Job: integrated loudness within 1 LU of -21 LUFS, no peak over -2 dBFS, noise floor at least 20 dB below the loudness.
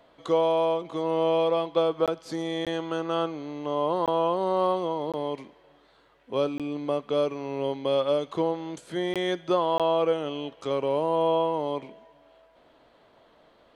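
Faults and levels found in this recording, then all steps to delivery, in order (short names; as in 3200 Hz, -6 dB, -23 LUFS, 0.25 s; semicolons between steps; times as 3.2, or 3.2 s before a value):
dropouts 7; longest dropout 17 ms; loudness -27.0 LUFS; peak -11.5 dBFS; loudness target -21.0 LUFS
-> interpolate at 2.06/2.65/4.06/5.12/6.58/9.14/9.78, 17 ms; gain +6 dB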